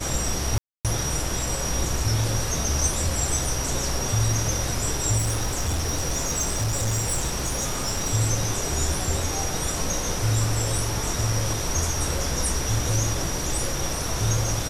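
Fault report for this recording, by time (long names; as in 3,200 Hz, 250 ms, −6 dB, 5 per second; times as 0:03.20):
0:00.58–0:00.85: drop-out 267 ms
0:05.17–0:08.13: clipping −20 dBFS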